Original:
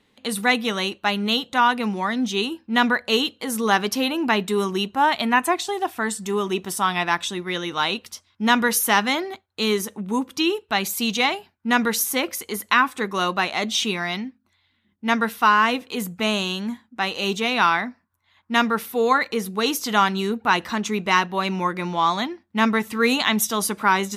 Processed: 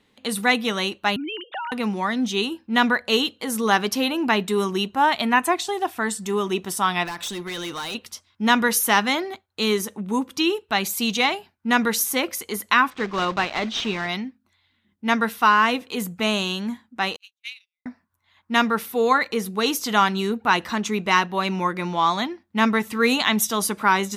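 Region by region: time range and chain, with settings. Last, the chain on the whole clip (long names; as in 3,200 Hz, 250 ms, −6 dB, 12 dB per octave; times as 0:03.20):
0:01.16–0:01.72: three sine waves on the formant tracks + downward compressor 12 to 1, threshold −27 dBFS
0:07.05–0:07.95: high-shelf EQ 3,700 Hz +6.5 dB + downward compressor 4 to 1, threshold −22 dBFS + hard clipping −27 dBFS
0:12.90–0:14.09: one scale factor per block 3 bits + high-frequency loss of the air 160 metres
0:17.16–0:17.86: linear-phase brick-wall high-pass 2,000 Hz + noise gate −24 dBFS, range −60 dB
whole clip: no processing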